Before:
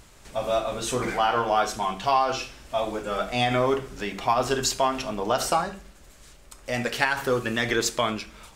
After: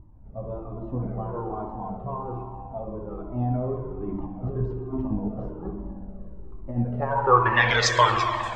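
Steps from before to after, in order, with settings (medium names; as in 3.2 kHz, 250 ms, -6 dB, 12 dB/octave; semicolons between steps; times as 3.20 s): fifteen-band graphic EQ 100 Hz +6 dB, 250 Hz -8 dB, 1 kHz +12 dB, 10 kHz -11 dB; 4.08–6.88 s: compressor with a negative ratio -28 dBFS, ratio -1; low-pass sweep 270 Hz -> 7.9 kHz, 6.87–7.99 s; reverberation RT60 2.8 s, pre-delay 65 ms, DRR 3.5 dB; Shepard-style flanger falling 1.2 Hz; trim +4 dB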